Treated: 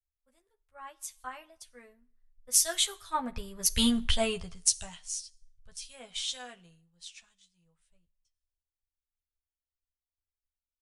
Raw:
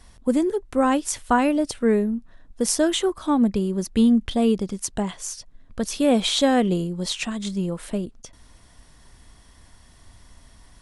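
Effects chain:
source passing by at 0:03.87, 18 m/s, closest 6.5 metres
guitar amp tone stack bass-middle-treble 10-0-10
double-tracking delay 12 ms −4 dB
dense smooth reverb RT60 0.85 s, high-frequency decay 0.85×, pre-delay 0 ms, DRR 17.5 dB
multiband upward and downward expander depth 100%
level +3.5 dB

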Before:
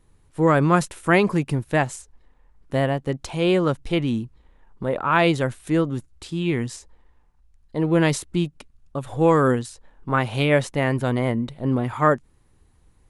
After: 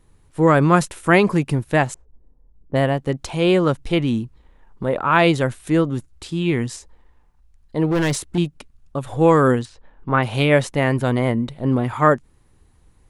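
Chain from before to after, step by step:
0:01.94–0:02.95: low-pass that shuts in the quiet parts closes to 350 Hz, open at −19 dBFS
0:07.91–0:08.38: gain into a clipping stage and back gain 19 dB
0:09.65–0:10.23: low-pass filter 3,500 Hz 12 dB per octave
level +3 dB

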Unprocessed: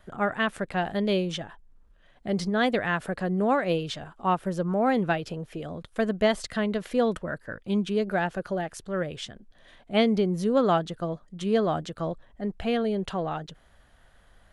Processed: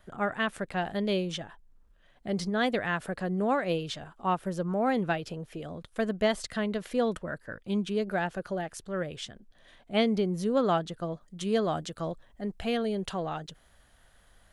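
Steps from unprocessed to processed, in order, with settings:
high-shelf EQ 4,500 Hz +3.5 dB, from 0:11.21 +10 dB
level −3.5 dB

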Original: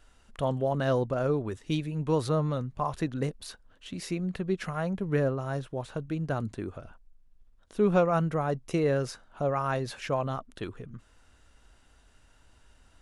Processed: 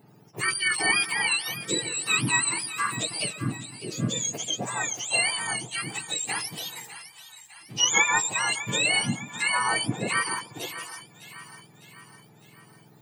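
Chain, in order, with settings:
frequency axis turned over on the octave scale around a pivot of 1,100 Hz
echo with a time of its own for lows and highs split 850 Hz, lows 133 ms, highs 604 ms, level −13.5 dB
level +6.5 dB

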